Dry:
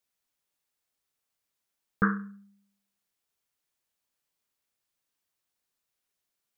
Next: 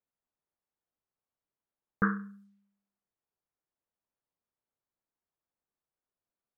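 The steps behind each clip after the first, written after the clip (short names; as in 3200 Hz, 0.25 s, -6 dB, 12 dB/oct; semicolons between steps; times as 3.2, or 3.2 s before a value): low-pass opened by the level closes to 1100 Hz, open at -36 dBFS; gain -2.5 dB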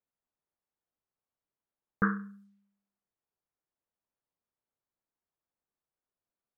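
nothing audible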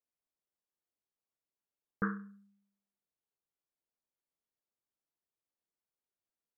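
bell 380 Hz +4 dB 1.6 oct; gain -7.5 dB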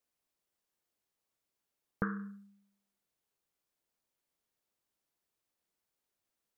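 compressor 10:1, threshold -37 dBFS, peak gain reduction 10 dB; gain +7 dB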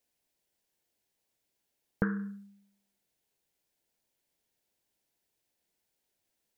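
bell 1200 Hz -11.5 dB 0.37 oct; gain +5.5 dB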